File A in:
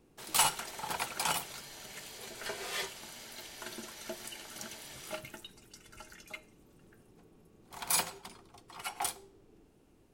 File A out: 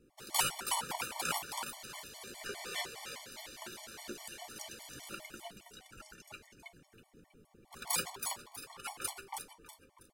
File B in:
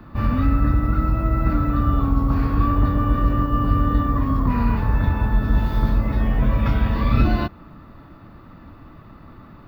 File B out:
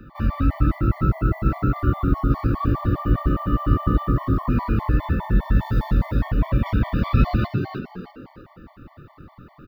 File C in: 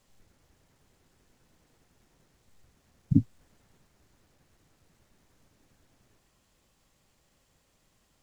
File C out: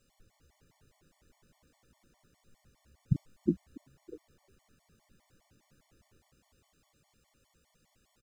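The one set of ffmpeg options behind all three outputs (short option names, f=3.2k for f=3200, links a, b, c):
-filter_complex "[0:a]asplit=5[a][b][c][d][e];[b]adelay=322,afreqshift=68,volume=-6dB[f];[c]adelay=644,afreqshift=136,volume=-15.9dB[g];[d]adelay=966,afreqshift=204,volume=-25.8dB[h];[e]adelay=1288,afreqshift=272,volume=-35.7dB[i];[a][f][g][h][i]amix=inputs=5:normalize=0,afftfilt=real='re*gt(sin(2*PI*4.9*pts/sr)*(1-2*mod(floor(b*sr/1024/590),2)),0)':imag='im*gt(sin(2*PI*4.9*pts/sr)*(1-2*mod(floor(b*sr/1024/590),2)),0)':win_size=1024:overlap=0.75"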